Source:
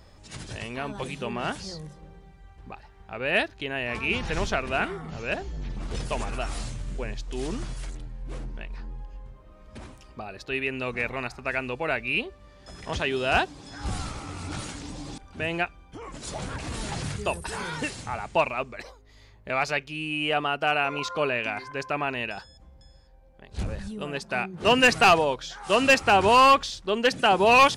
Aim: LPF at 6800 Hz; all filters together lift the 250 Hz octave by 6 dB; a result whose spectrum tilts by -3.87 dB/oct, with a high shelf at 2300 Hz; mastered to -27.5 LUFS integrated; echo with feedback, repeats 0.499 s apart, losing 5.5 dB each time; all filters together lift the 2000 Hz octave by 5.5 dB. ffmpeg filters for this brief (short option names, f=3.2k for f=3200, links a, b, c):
-af "lowpass=6.8k,equalizer=f=250:t=o:g=7,equalizer=f=2k:t=o:g=4.5,highshelf=f=2.3k:g=5,aecho=1:1:499|998|1497|1996|2495|2994|3493:0.531|0.281|0.149|0.079|0.0419|0.0222|0.0118,volume=-6.5dB"